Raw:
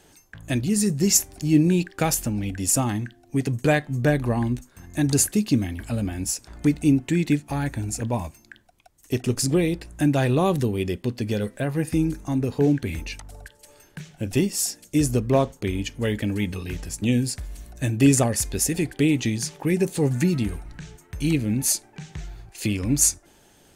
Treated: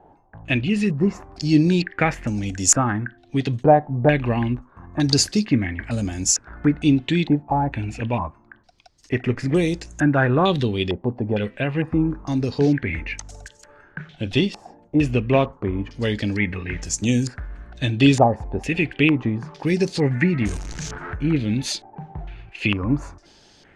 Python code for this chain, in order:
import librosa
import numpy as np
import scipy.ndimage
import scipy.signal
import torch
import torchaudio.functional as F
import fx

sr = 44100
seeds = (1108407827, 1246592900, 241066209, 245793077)

y = fx.zero_step(x, sr, step_db=-32.5, at=(20.41, 21.16))
y = fx.filter_held_lowpass(y, sr, hz=2.2, low_hz=830.0, high_hz=6500.0)
y = y * librosa.db_to_amplitude(1.5)